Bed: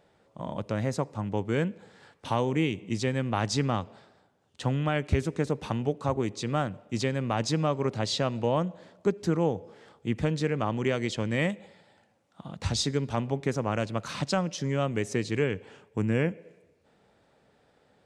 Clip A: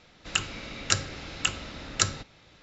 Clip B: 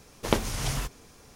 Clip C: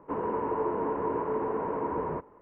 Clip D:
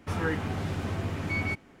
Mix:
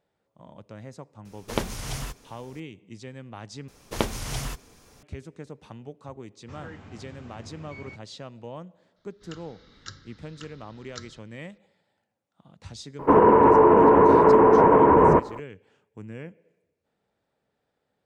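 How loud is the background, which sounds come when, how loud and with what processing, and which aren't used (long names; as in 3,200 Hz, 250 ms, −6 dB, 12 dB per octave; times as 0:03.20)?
bed −13 dB
0:01.25: mix in B −3 dB
0:03.68: overwrite with B −1.5 dB
0:06.41: mix in D −14 dB + Butterworth low-pass 7,900 Hz 96 dB per octave
0:08.96: mix in A −14 dB + phaser with its sweep stopped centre 2,500 Hz, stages 6
0:12.99: mix in C −6 dB + boost into a limiter +24 dB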